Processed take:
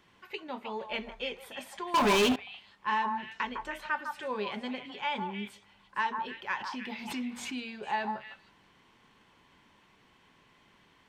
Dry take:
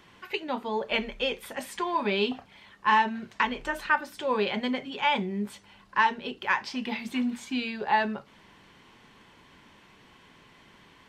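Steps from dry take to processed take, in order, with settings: repeats whose band climbs or falls 155 ms, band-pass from 990 Hz, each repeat 1.4 oct, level -3.5 dB; 1.94–2.36 s: waveshaping leveller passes 5; 6.57–7.68 s: swell ahead of each attack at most 48 dB/s; trim -8 dB

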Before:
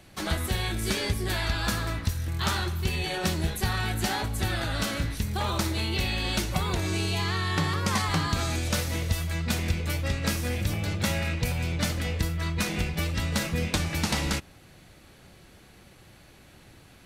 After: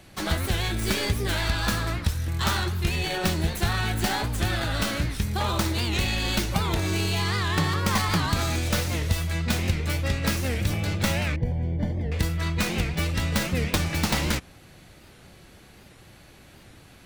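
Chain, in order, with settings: tracing distortion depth 0.13 ms; 11.36–12.12 s: boxcar filter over 34 samples; warped record 78 rpm, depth 160 cents; trim +2.5 dB

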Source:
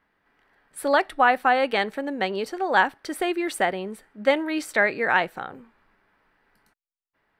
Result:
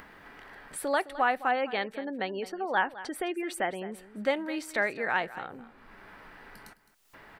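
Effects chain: 1.51–3.92 s: spectral gate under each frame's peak -30 dB strong; upward compressor, threshold -23 dBFS; delay 212 ms -16 dB; trim -7.5 dB

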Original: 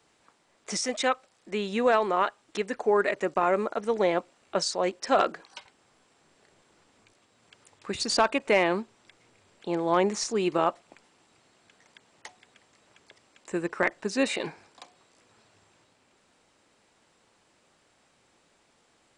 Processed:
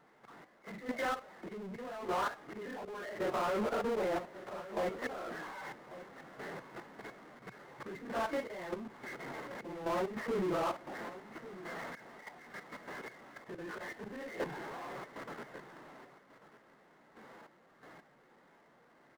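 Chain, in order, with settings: phase randomisation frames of 100 ms; gate with hold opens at -54 dBFS; compression 6:1, threshold -35 dBFS, peak gain reduction 17 dB; slow attack 513 ms; level held to a coarse grid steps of 21 dB; FFT band-pass 120–2200 Hz; power-law waveshaper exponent 0.5; delay 1142 ms -15.5 dB; trim +4.5 dB

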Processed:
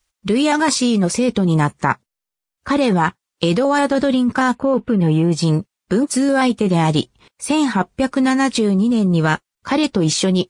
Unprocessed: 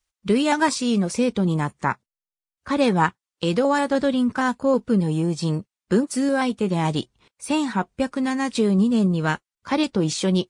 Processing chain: 4.55–5.32 s: resonant high shelf 3.8 kHz -10.5 dB, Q 1.5; in parallel at +1 dB: compressor with a negative ratio -22 dBFS, ratio -0.5

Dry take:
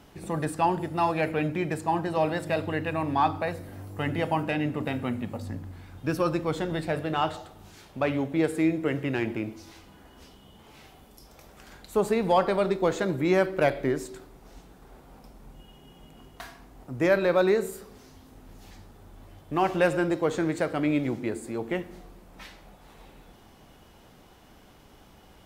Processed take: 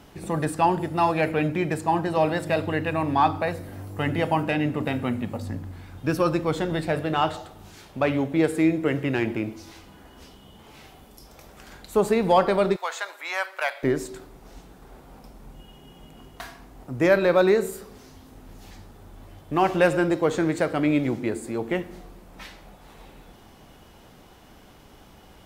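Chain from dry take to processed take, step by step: 12.76–13.83 s: high-pass 830 Hz 24 dB/octave; trim +3.5 dB

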